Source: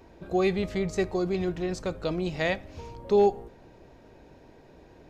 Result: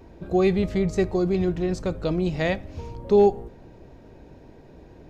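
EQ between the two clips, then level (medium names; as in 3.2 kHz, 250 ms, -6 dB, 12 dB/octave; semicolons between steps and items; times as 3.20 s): bass shelf 420 Hz +8 dB; 0.0 dB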